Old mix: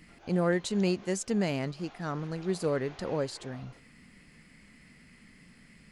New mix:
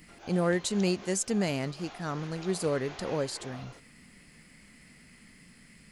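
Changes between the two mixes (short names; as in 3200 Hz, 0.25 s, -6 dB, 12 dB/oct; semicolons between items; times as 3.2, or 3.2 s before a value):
background +5.0 dB; master: add high shelf 6500 Hz +10.5 dB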